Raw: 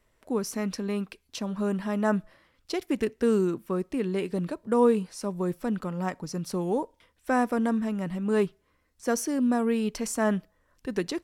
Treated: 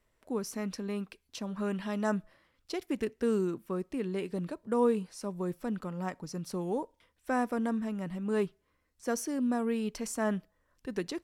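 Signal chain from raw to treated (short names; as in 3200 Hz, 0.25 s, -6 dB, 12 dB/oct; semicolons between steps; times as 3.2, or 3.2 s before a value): 1.56–2.13 bell 1600 Hz -> 6700 Hz +8 dB 1.2 oct; gain -5.5 dB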